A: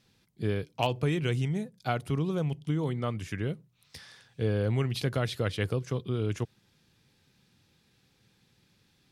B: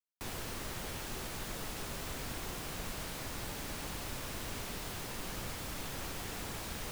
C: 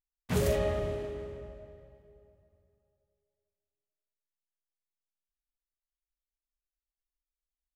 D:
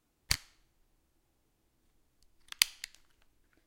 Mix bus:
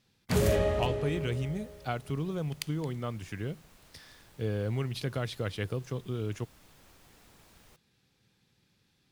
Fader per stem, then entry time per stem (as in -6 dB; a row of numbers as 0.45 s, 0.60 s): -4.0 dB, -18.0 dB, +2.0 dB, -12.5 dB; 0.00 s, 0.85 s, 0.00 s, 0.00 s